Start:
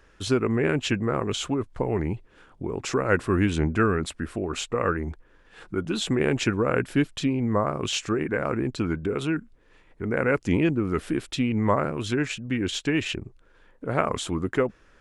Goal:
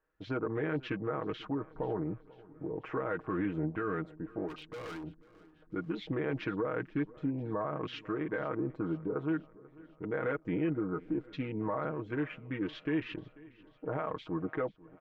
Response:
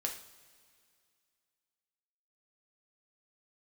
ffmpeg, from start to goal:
-filter_complex "[0:a]afwtdn=0.0178,lowpass=1600,lowshelf=frequency=220:gain=-10.5,aecho=1:1:6.4:0.7,alimiter=limit=-19.5dB:level=0:latency=1:release=41,asettb=1/sr,asplit=3[link_01][link_02][link_03];[link_01]atrim=end=4.484[link_04];[link_02]atrim=start=4.48:end=5.04,asetpts=PTS-STARTPTS,afade=type=in:duration=0.004:curve=qsin,afade=type=out:start_time=0.556:duration=0.004:curve=qsin,asoftclip=type=hard:threshold=-35.5dB[link_05];[link_03]atrim=start=5.036[link_06];[link_04][link_05]acrossfade=duration=0.004:curve1=hsin:curve2=qsin[link_07];[link_07][link_06]acrossfade=duration=0.004:curve1=qsin:curve2=hsin,aecho=1:1:491|982|1473|1964:0.0794|0.0461|0.0267|0.0155,volume=-5dB"

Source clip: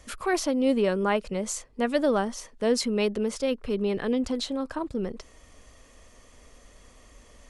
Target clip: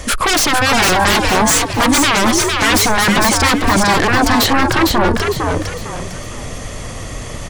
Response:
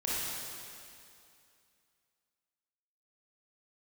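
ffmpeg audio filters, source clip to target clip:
-filter_complex "[0:a]aeval=exprs='0.299*sin(PI/2*10*val(0)/0.299)':channel_layout=same,asplit=5[link_01][link_02][link_03][link_04][link_05];[link_02]adelay=455,afreqshift=82,volume=-4dB[link_06];[link_03]adelay=910,afreqshift=164,volume=-13.6dB[link_07];[link_04]adelay=1365,afreqshift=246,volume=-23.3dB[link_08];[link_05]adelay=1820,afreqshift=328,volume=-32.9dB[link_09];[link_01][link_06][link_07][link_08][link_09]amix=inputs=5:normalize=0"

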